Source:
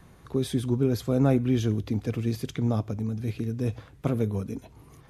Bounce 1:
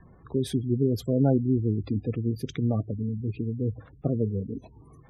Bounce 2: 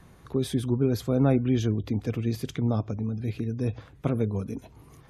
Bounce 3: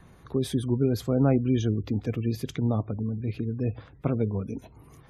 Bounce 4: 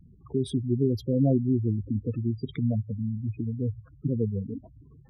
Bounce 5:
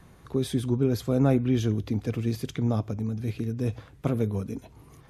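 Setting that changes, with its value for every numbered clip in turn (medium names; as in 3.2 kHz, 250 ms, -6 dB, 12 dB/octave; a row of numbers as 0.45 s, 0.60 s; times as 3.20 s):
spectral gate, under each frame's peak: -20 dB, -45 dB, -35 dB, -10 dB, -60 dB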